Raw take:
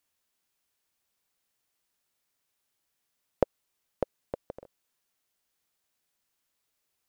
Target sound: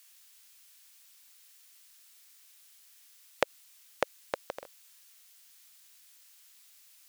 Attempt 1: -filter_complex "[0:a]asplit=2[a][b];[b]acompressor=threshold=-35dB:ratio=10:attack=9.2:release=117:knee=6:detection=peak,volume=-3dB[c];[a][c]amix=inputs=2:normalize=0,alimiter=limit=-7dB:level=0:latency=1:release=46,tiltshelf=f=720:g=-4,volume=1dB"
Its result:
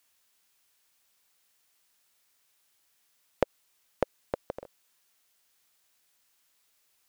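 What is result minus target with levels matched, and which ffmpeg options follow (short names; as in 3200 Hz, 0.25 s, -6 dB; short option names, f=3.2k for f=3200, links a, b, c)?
1000 Hz band -2.5 dB
-filter_complex "[0:a]asplit=2[a][b];[b]acompressor=threshold=-35dB:ratio=10:attack=9.2:release=117:knee=6:detection=peak,volume=-3dB[c];[a][c]amix=inputs=2:normalize=0,alimiter=limit=-7dB:level=0:latency=1:release=46,tiltshelf=f=720:g=-16,volume=1dB"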